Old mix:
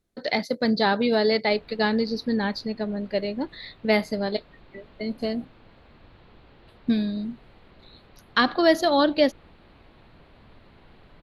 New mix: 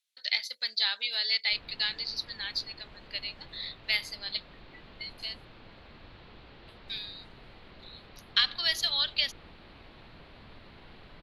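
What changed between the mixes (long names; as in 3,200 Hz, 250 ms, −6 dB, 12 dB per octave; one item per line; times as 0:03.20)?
speech: add high-pass with resonance 3,000 Hz, resonance Q 1.6
background: add high-shelf EQ 2,000 Hz +7.5 dB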